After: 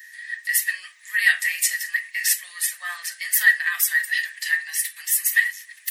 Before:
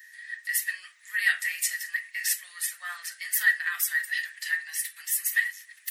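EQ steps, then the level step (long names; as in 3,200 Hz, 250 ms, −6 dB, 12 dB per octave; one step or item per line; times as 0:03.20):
notch filter 1,400 Hz, Q 6.6
+6.5 dB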